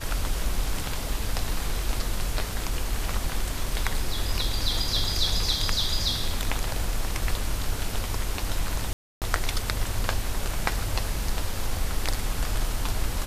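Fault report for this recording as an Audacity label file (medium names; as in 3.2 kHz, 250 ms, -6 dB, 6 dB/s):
8.930000	9.220000	dropout 288 ms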